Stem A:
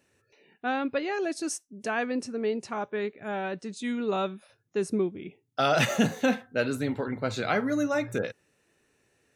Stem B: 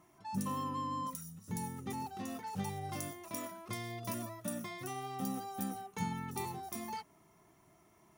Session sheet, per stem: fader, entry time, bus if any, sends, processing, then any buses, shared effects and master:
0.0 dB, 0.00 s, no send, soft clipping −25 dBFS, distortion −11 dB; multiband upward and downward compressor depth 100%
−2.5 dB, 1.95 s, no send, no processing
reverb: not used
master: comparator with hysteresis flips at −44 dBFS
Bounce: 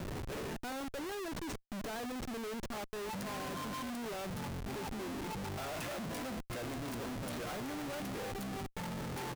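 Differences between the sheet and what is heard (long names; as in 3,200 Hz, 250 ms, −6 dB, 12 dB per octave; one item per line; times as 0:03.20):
stem A 0.0 dB → −8.5 dB
stem B: entry 1.95 s → 2.80 s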